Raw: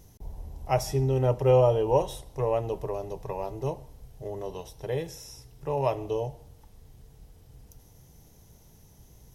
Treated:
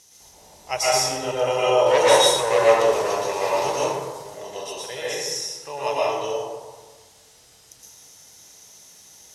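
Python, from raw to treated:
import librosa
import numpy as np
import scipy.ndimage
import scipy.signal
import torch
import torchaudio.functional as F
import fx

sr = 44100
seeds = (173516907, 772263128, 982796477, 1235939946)

y = fx.leveller(x, sr, passes=2, at=(1.86, 4.22))
y = fx.weighting(y, sr, curve='ITU-R 468')
y = fx.rev_plate(y, sr, seeds[0], rt60_s=1.4, hf_ratio=0.45, predelay_ms=105, drr_db=-7.5)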